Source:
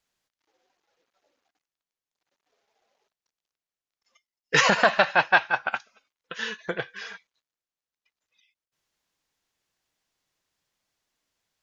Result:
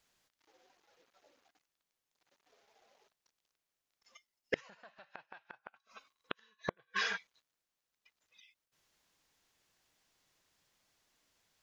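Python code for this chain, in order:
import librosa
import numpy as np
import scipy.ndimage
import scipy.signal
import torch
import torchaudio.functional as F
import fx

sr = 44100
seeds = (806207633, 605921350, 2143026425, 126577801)

y = fx.small_body(x, sr, hz=(1100.0, 3900.0), ring_ms=45, db=15, at=(5.76, 7.02))
y = fx.gate_flip(y, sr, shuts_db=-22.0, range_db=-42)
y = y * librosa.db_to_amplitude(4.0)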